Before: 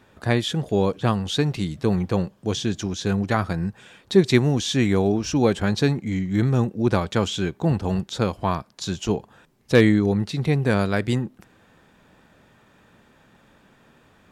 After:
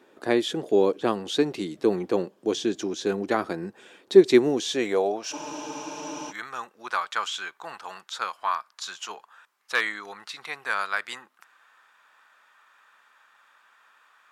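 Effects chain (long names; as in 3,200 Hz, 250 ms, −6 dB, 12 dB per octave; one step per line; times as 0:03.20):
high-pass filter sweep 340 Hz → 1,200 Hz, 0:04.47–0:05.96
frozen spectrum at 0:05.33, 0.97 s
level −3.5 dB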